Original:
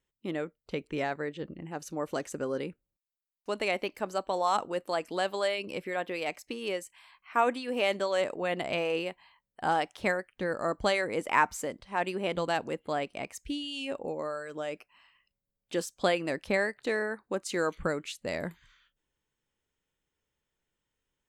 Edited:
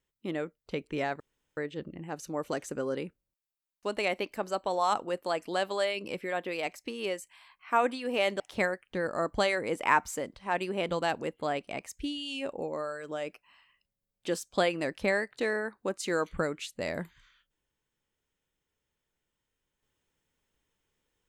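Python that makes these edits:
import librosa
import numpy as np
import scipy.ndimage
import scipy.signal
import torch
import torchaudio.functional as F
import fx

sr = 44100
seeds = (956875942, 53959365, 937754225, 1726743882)

y = fx.edit(x, sr, fx.insert_room_tone(at_s=1.2, length_s=0.37),
    fx.cut(start_s=8.03, length_s=1.83), tone=tone)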